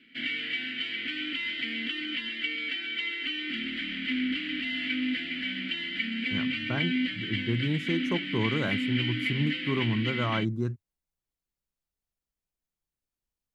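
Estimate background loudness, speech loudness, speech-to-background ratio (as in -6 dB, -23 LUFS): -30.5 LUFS, -31.5 LUFS, -1.0 dB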